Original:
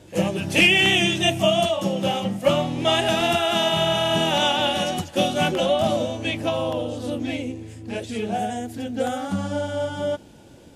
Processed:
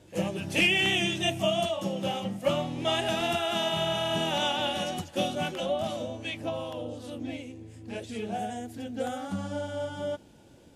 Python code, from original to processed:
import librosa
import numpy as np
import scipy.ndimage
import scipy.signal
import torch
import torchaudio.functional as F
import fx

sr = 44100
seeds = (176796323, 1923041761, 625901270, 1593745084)

y = fx.harmonic_tremolo(x, sr, hz=2.6, depth_pct=50, crossover_hz=990.0, at=(5.35, 7.74))
y = F.gain(torch.from_numpy(y), -7.5).numpy()